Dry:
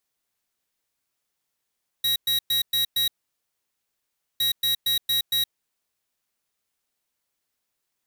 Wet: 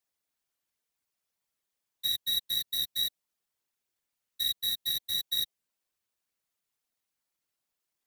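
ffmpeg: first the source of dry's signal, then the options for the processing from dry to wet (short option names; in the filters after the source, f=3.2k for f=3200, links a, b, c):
-f lavfi -i "aevalsrc='0.075*(2*lt(mod(3840*t,1),0.5)-1)*clip(min(mod(mod(t,2.36),0.23),0.12-mod(mod(t,2.36),0.23))/0.005,0,1)*lt(mod(t,2.36),1.15)':d=4.72:s=44100"
-filter_complex "[0:a]acrossover=split=200|1100|2000[a][b][c][d];[c]acompressor=threshold=-55dB:ratio=6[e];[a][b][e][d]amix=inputs=4:normalize=0,afftfilt=real='hypot(re,im)*cos(2*PI*random(0))':imag='hypot(re,im)*sin(2*PI*random(1))':win_size=512:overlap=0.75"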